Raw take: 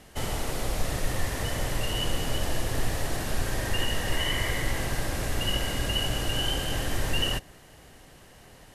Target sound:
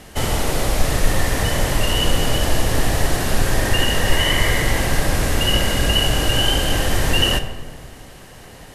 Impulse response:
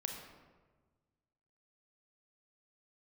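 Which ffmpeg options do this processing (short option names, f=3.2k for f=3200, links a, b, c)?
-filter_complex "[0:a]asplit=2[a][b];[1:a]atrim=start_sample=2205,asetrate=42336,aresample=44100[c];[b][c]afir=irnorm=-1:irlink=0,volume=0dB[d];[a][d]amix=inputs=2:normalize=0,volume=5dB"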